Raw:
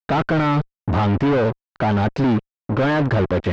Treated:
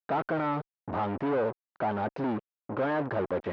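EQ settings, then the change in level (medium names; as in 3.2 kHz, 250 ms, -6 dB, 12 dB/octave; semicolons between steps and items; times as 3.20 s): band-pass filter 720 Hz, Q 0.63; -7.5 dB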